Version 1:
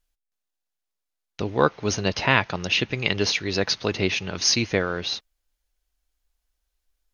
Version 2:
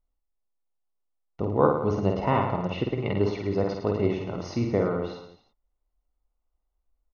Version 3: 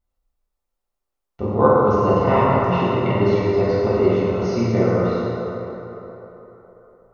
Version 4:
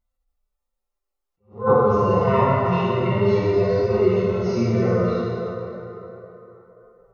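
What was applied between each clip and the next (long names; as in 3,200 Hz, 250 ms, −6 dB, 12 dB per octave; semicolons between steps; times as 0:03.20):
Savitzky-Golay smoothing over 65 samples; on a send: reverse bouncing-ball delay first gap 50 ms, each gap 1.15×, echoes 5; on the sum: level −1 dB
convolution reverb RT60 3.9 s, pre-delay 6 ms, DRR −7.5 dB
harmonic-percussive split with one part muted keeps harmonic; level that may rise only so fast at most 190 dB per second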